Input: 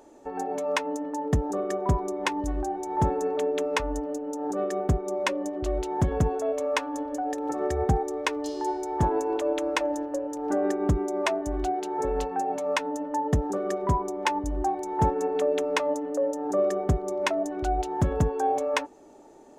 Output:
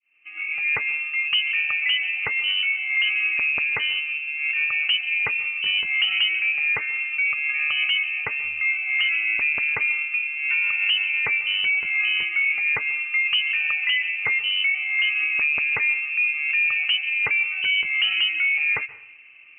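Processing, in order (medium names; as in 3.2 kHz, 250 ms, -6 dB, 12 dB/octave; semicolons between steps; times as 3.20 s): fade-in on the opening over 0.72 s; dynamic bell 820 Hz, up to +6 dB, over -39 dBFS, Q 1.4; peak limiter -17.5 dBFS, peak gain reduction 10 dB; plate-style reverb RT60 0.73 s, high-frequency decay 0.75×, pre-delay 115 ms, DRR 17.5 dB; frequency inversion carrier 3 kHz; trim +3 dB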